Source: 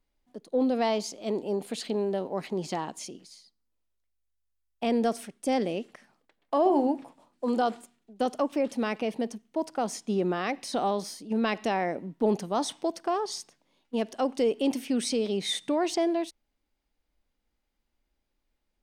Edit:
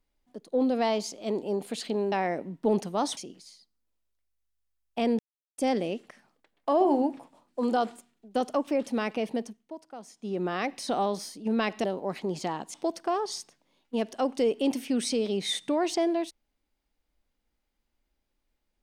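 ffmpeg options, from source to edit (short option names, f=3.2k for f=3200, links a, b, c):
-filter_complex "[0:a]asplit=9[a][b][c][d][e][f][g][h][i];[a]atrim=end=2.122[j];[b]atrim=start=11.688:end=12.742[k];[c]atrim=start=3.018:end=5.04,asetpts=PTS-STARTPTS,afade=t=out:st=2.018:d=0.004:c=hsin[l];[d]atrim=start=5.04:end=5.43,asetpts=PTS-STARTPTS,volume=0[m];[e]atrim=start=5.43:end=9.62,asetpts=PTS-STARTPTS,afade=t=in:d=0.004:c=hsin,afade=t=out:st=3.77:d=0.42:silence=0.199526[n];[f]atrim=start=9.62:end=9.99,asetpts=PTS-STARTPTS,volume=-14dB[o];[g]atrim=start=9.99:end=11.692,asetpts=PTS-STARTPTS,afade=t=in:d=0.42:silence=0.199526[p];[h]atrim=start=2.118:end=3.022[q];[i]atrim=start=12.738[r];[j][k]acrossfade=d=0.004:c1=hsin:c2=hsin[s];[l][m][n][o][p]concat=n=5:v=0:a=1[t];[s][t]acrossfade=d=0.004:c1=hsin:c2=hsin[u];[u][q]acrossfade=d=0.004:c1=hsin:c2=hsin[v];[v][r]acrossfade=d=0.004:c1=hsin:c2=hsin"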